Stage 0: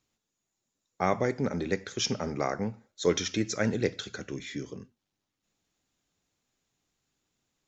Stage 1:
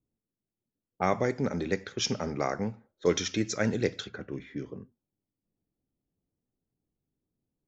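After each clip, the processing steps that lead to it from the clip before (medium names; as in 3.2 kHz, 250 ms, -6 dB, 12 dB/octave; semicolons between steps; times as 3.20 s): level-controlled noise filter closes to 400 Hz, open at -26 dBFS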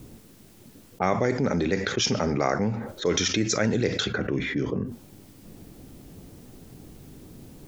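level flattener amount 70%; trim -1 dB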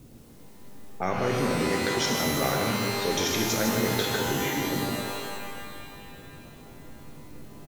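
on a send: delay 155 ms -7.5 dB; on the sum: pitch-shifted reverb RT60 2 s, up +12 st, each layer -2 dB, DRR 2 dB; trim -5.5 dB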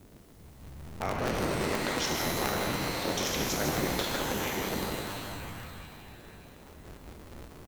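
cycle switcher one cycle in 3, inverted; trim -4.5 dB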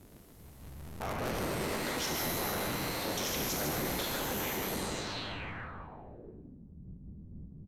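saturation -27.5 dBFS, distortion -13 dB; low-pass sweep 13 kHz -> 180 Hz, 4.67–6.67 s; trim -1.5 dB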